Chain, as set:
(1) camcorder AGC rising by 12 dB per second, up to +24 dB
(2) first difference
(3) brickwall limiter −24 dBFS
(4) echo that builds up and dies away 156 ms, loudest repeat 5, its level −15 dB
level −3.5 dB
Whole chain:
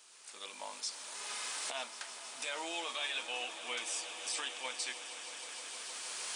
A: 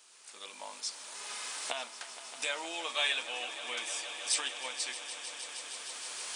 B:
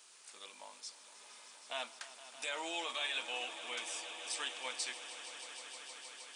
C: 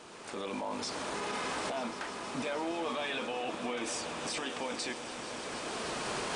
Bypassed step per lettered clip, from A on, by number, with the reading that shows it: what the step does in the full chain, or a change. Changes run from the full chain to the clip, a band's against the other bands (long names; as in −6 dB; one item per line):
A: 3, change in crest factor +6.5 dB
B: 1, change in crest factor +1.5 dB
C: 2, 250 Hz band +15.0 dB